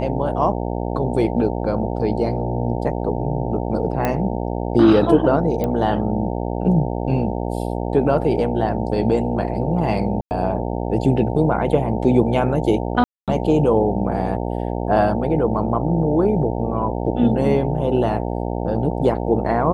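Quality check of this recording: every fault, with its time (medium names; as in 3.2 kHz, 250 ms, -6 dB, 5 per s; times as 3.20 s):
buzz 60 Hz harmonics 15 -24 dBFS
4.05 s: pop -7 dBFS
5.64 s: pop -11 dBFS
10.21–10.31 s: dropout 99 ms
13.04–13.28 s: dropout 237 ms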